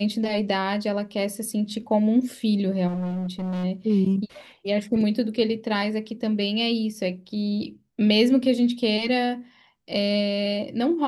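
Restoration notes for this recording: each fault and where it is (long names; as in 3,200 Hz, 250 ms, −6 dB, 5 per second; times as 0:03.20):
0:02.87–0:03.65: clipping −25.5 dBFS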